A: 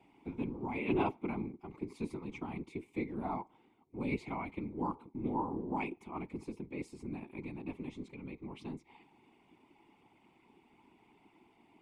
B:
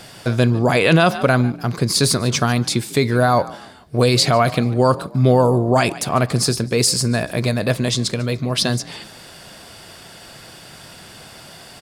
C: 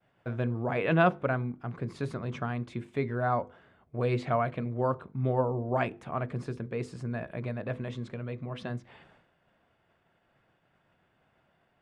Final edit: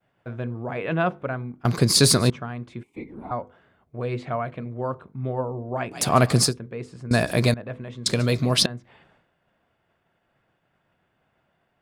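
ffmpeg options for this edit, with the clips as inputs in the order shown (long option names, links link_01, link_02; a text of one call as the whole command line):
ffmpeg -i take0.wav -i take1.wav -i take2.wav -filter_complex "[1:a]asplit=4[link_01][link_02][link_03][link_04];[2:a]asplit=6[link_05][link_06][link_07][link_08][link_09][link_10];[link_05]atrim=end=1.652[link_11];[link_01]atrim=start=1.648:end=2.302[link_12];[link_06]atrim=start=2.298:end=2.832[link_13];[0:a]atrim=start=2.828:end=3.312[link_14];[link_07]atrim=start=3.308:end=6.01[link_15];[link_02]atrim=start=5.91:end=6.54[link_16];[link_08]atrim=start=6.44:end=7.112[link_17];[link_03]atrim=start=7.108:end=7.542[link_18];[link_09]atrim=start=7.538:end=8.062[link_19];[link_04]atrim=start=8.058:end=8.662[link_20];[link_10]atrim=start=8.658[link_21];[link_11][link_12]acrossfade=duration=0.004:curve1=hsin:curve2=hsin[link_22];[link_22][link_13]acrossfade=duration=0.004:curve1=hsin:curve2=hsin[link_23];[link_23][link_14]acrossfade=duration=0.004:curve1=hsin:curve2=hsin[link_24];[link_24][link_15]acrossfade=duration=0.004:curve1=hsin:curve2=hsin[link_25];[link_25][link_16]acrossfade=duration=0.1:curve1=tri:curve2=tri[link_26];[link_26][link_17]acrossfade=duration=0.1:curve1=tri:curve2=tri[link_27];[link_27][link_18]acrossfade=duration=0.004:curve1=hsin:curve2=hsin[link_28];[link_28][link_19]acrossfade=duration=0.004:curve1=hsin:curve2=hsin[link_29];[link_29][link_20]acrossfade=duration=0.004:curve1=hsin:curve2=hsin[link_30];[link_30][link_21]acrossfade=duration=0.004:curve1=hsin:curve2=hsin" out.wav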